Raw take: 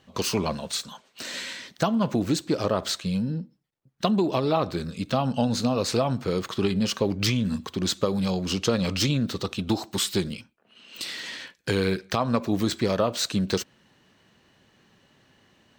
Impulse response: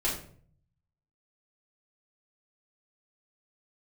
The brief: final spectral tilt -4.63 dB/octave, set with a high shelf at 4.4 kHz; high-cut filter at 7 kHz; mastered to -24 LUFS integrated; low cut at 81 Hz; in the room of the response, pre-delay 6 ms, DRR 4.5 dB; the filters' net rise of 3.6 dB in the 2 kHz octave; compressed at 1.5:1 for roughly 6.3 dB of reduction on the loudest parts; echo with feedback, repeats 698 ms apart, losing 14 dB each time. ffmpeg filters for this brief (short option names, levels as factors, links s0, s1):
-filter_complex "[0:a]highpass=81,lowpass=7000,equalizer=f=2000:t=o:g=6.5,highshelf=f=4400:g=-8,acompressor=threshold=0.0158:ratio=1.5,aecho=1:1:698|1396:0.2|0.0399,asplit=2[s0][s1];[1:a]atrim=start_sample=2205,adelay=6[s2];[s1][s2]afir=irnorm=-1:irlink=0,volume=0.237[s3];[s0][s3]amix=inputs=2:normalize=0,volume=2.11"